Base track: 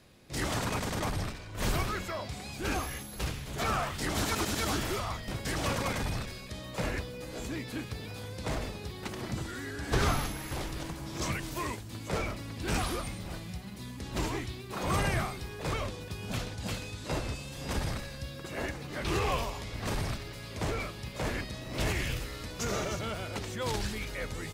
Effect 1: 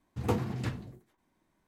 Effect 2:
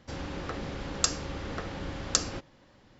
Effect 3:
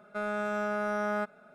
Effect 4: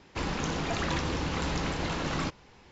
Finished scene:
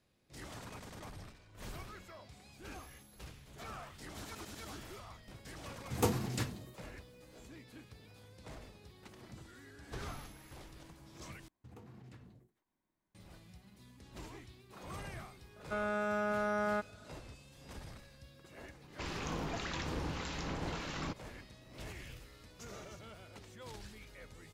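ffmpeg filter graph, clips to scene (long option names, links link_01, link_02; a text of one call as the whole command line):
ffmpeg -i bed.wav -i cue0.wav -i cue1.wav -i cue2.wav -i cue3.wav -filter_complex "[1:a]asplit=2[link_01][link_02];[0:a]volume=-16.5dB[link_03];[link_01]bass=frequency=250:gain=-3,treble=frequency=4000:gain=12[link_04];[link_02]acompressor=threshold=-37dB:ratio=6:attack=3.2:release=140:knee=1:detection=peak[link_05];[4:a]acrossover=split=1400[link_06][link_07];[link_06]aeval=exprs='val(0)*(1-0.5/2+0.5/2*cos(2*PI*1.7*n/s))':channel_layout=same[link_08];[link_07]aeval=exprs='val(0)*(1-0.5/2-0.5/2*cos(2*PI*1.7*n/s))':channel_layout=same[link_09];[link_08][link_09]amix=inputs=2:normalize=0[link_10];[link_03]asplit=2[link_11][link_12];[link_11]atrim=end=11.484[link_13];[link_05]atrim=end=1.67,asetpts=PTS-STARTPTS,volume=-13.5dB[link_14];[link_12]atrim=start=13.146[link_15];[link_04]atrim=end=1.67,asetpts=PTS-STARTPTS,volume=-1dB,afade=type=in:duration=0.004:curve=hsin,afade=type=out:start_time=1.666:duration=0.004:curve=hsin,adelay=5740[link_16];[3:a]atrim=end=1.54,asetpts=PTS-STARTPTS,volume=-3dB,afade=type=in:duration=0.004:curve=hsin,afade=type=out:start_time=1.536:duration=0.004:curve=hsin,adelay=686196S[link_17];[link_10]atrim=end=2.71,asetpts=PTS-STARTPTS,volume=-6.5dB,afade=type=in:duration=0.004:curve=hsin,afade=type=out:start_time=2.706:duration=0.004:curve=hsin,adelay=18830[link_18];[link_13][link_14]acrossfade=duration=0.004:curve1=hsin:curve2=hsin[link_19];[link_19][link_15]acrossfade=duration=0.004:curve1=hsin:curve2=hsin[link_20];[link_20][link_16][link_17][link_18]amix=inputs=4:normalize=0" out.wav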